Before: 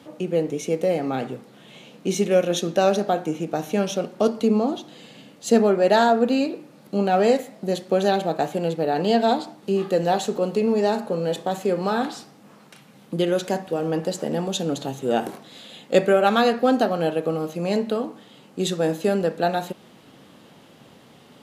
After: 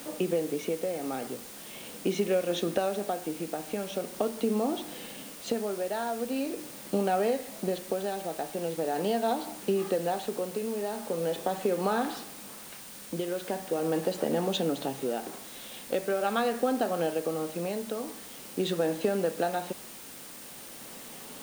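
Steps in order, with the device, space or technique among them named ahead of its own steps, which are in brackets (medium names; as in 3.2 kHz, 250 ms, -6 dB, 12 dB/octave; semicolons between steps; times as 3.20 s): medium wave at night (band-pass 200–3600 Hz; compression, threshold -27 dBFS, peak gain reduction 15 dB; tremolo 0.42 Hz, depth 50%; whistle 9 kHz -56 dBFS; white noise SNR 15 dB); trim +3 dB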